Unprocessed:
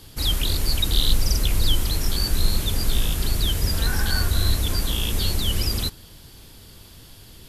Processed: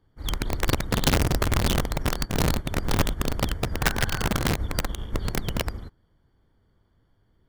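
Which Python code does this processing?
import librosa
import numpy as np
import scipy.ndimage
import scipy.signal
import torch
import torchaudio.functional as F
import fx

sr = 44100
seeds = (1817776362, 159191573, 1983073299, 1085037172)

y = scipy.signal.savgol_filter(x, 41, 4, mode='constant')
y = (np.mod(10.0 ** (15.0 / 20.0) * y + 1.0, 2.0) - 1.0) / 10.0 ** (15.0 / 20.0)
y = fx.upward_expand(y, sr, threshold_db=-30.0, expansion=2.5)
y = y * 10.0 ** (1.5 / 20.0)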